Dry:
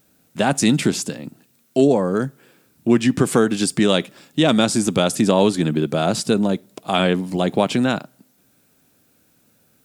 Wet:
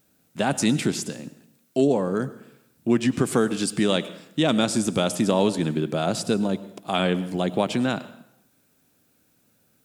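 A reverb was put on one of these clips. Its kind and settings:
dense smooth reverb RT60 0.77 s, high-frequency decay 0.85×, pre-delay 85 ms, DRR 15.5 dB
level −5 dB

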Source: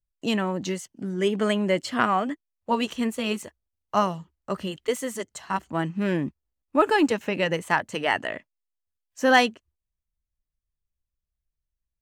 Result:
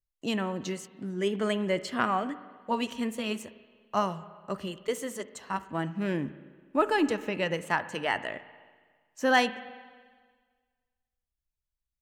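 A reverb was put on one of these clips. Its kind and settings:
spring reverb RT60 1.6 s, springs 41/55 ms, chirp 55 ms, DRR 14 dB
level −5 dB

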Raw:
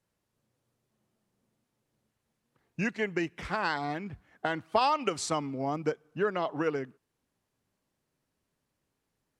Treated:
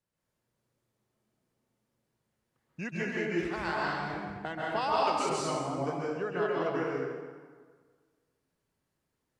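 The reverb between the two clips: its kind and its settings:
dense smooth reverb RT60 1.6 s, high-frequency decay 0.7×, pre-delay 120 ms, DRR −6 dB
level −7.5 dB

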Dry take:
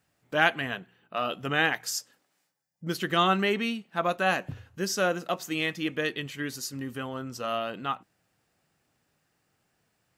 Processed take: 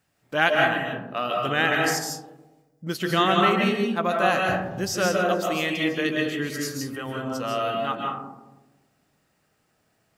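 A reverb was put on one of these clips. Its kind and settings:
comb and all-pass reverb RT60 1.1 s, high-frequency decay 0.25×, pre-delay 110 ms, DRR −0.5 dB
level +1.5 dB

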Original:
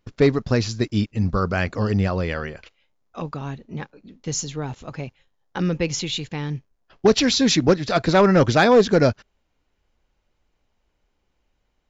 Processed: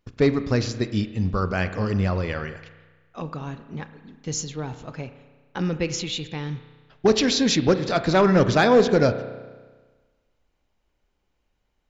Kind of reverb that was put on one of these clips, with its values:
spring reverb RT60 1.4 s, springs 32 ms, chirp 25 ms, DRR 10.5 dB
level −2.5 dB

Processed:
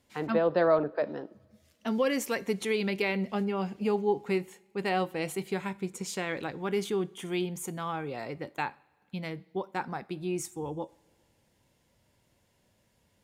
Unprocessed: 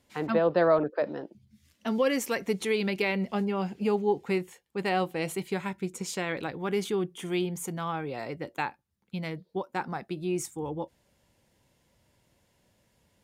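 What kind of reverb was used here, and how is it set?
coupled-rooms reverb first 0.47 s, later 2.1 s, from −17 dB, DRR 17.5 dB
level −1.5 dB

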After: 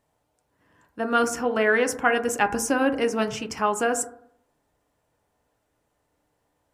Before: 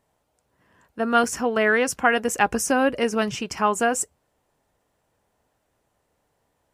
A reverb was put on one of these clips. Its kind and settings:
feedback delay network reverb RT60 0.66 s, low-frequency decay 1.1×, high-frequency decay 0.25×, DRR 7.5 dB
level −2.5 dB

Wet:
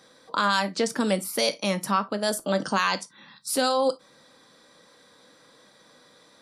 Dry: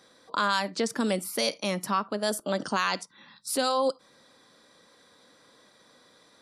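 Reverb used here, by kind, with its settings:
reverb whose tail is shaped and stops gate 80 ms falling, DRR 10 dB
level +2.5 dB

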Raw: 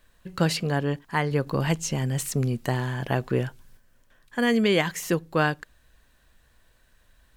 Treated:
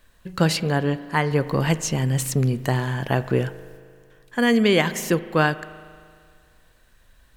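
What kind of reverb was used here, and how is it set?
spring reverb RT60 2.1 s, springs 38 ms, chirp 50 ms, DRR 14.5 dB
level +3.5 dB

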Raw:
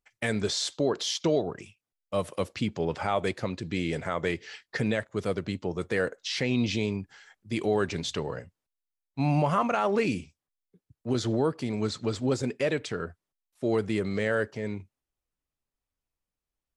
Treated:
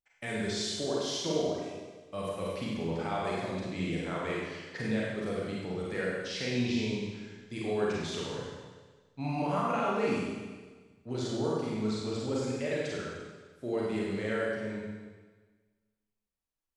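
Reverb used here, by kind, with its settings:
four-comb reverb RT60 1.4 s, combs from 33 ms, DRR −5.5 dB
level −10.5 dB

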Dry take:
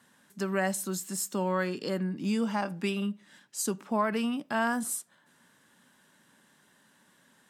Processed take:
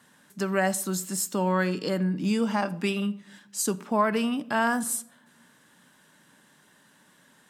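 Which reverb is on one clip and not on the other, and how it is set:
rectangular room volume 2,500 cubic metres, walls furnished, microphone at 0.46 metres
level +4 dB

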